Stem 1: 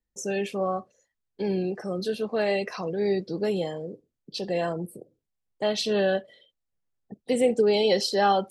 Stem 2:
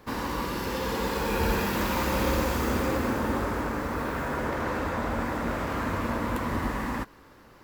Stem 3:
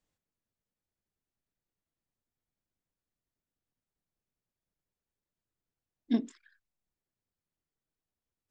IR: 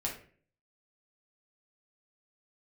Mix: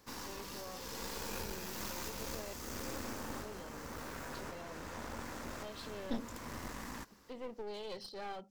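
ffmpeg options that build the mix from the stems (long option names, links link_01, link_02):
-filter_complex "[0:a]lowpass=frequency=4300:width=0.5412,lowpass=frequency=4300:width=1.3066,bandreject=frequency=50:width_type=h:width=6,bandreject=frequency=100:width_type=h:width=6,bandreject=frequency=150:width_type=h:width=6,bandreject=frequency=200:width_type=h:width=6,volume=-20dB,asplit=3[link_01][link_02][link_03];[link_01]atrim=end=2.53,asetpts=PTS-STARTPTS,afade=type=out:start_time=2.526:duration=0.004:curve=hsin[link_04];[link_02]atrim=start=2.53:end=3.38,asetpts=PTS-STARTPTS,volume=0[link_05];[link_03]atrim=start=3.38,asetpts=PTS-STARTPTS,afade=type=in:duration=0.004:curve=hsin[link_06];[link_04][link_05][link_06]concat=n=3:v=0:a=1,asplit=2[link_07][link_08];[1:a]highshelf=frequency=4800:gain=9.5,volume=-13dB[link_09];[2:a]alimiter=level_in=1.5dB:limit=-24dB:level=0:latency=1:release=298,volume=-1.5dB,volume=0dB[link_10];[link_08]apad=whole_len=336588[link_11];[link_09][link_11]sidechaincompress=threshold=-46dB:ratio=8:attack=9.3:release=647[link_12];[link_07][link_12][link_10]amix=inputs=3:normalize=0,equalizer=frequency=5900:width=1.3:gain=8.5,aeval=exprs='clip(val(0),-1,0.00355)':channel_layout=same"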